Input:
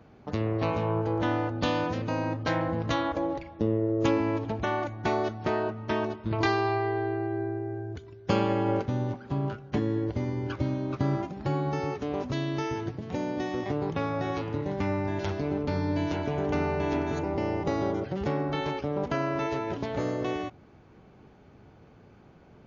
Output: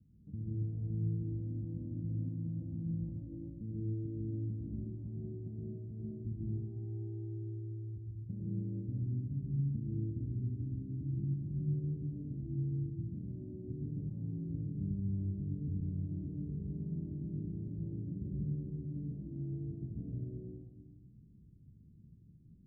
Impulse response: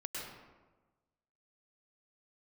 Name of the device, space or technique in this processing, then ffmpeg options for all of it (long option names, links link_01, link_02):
club heard from the street: -filter_complex "[0:a]alimiter=limit=-19.5dB:level=0:latency=1:release=139,lowpass=frequency=210:width=0.5412,lowpass=frequency=210:width=1.3066[link_01];[1:a]atrim=start_sample=2205[link_02];[link_01][link_02]afir=irnorm=-1:irlink=0,volume=-3dB"